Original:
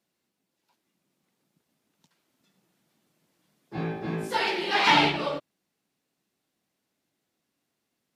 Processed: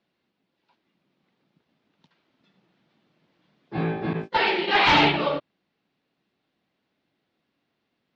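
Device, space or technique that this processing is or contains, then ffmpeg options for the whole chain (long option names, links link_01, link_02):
synthesiser wavefolder: -filter_complex "[0:a]aeval=exprs='0.158*(abs(mod(val(0)/0.158+3,4)-2)-1)':channel_layout=same,lowpass=frequency=4100:width=0.5412,lowpass=frequency=4100:width=1.3066,asettb=1/sr,asplit=3[link_01][link_02][link_03];[link_01]atrim=end=4.134[link_04];[link_02]atrim=start=4.13:end=4.68,asetpts=PTS-STARTPTS,afade=type=in:duration=0.004:curve=qsin,afade=type=out:start_time=0.546:duration=0.004:curve=qsin,agate=range=-36dB:threshold=-30dB:ratio=16:detection=peak[link_05];[link_03]atrim=start=4.676[link_06];[link_04][link_05]acrossfade=duration=0.004:curve1=hsin:curve2=qsin[link_07];[link_07][link_06]acrossfade=duration=0.004:curve1=qsin:curve2=hsin,volume=5dB"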